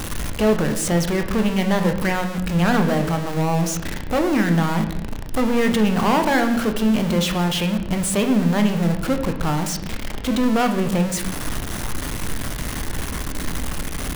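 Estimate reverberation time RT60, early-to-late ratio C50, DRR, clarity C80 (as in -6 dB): not exponential, 9.0 dB, 5.5 dB, 11.0 dB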